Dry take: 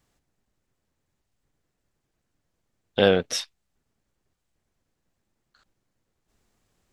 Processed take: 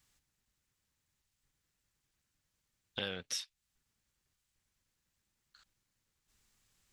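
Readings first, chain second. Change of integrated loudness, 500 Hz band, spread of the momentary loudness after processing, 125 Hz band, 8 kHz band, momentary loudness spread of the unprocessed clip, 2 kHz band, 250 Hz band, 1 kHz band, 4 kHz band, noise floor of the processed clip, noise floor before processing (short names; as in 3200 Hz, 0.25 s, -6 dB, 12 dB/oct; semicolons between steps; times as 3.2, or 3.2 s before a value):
-16.5 dB, -24.5 dB, 9 LU, -19.0 dB, -8.0 dB, 14 LU, -14.5 dB, -21.5 dB, -20.5 dB, -10.5 dB, -84 dBFS, -79 dBFS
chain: passive tone stack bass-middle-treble 5-5-5; notch 690 Hz; compressor 3:1, threshold -47 dBFS, peak gain reduction 14 dB; gain +8 dB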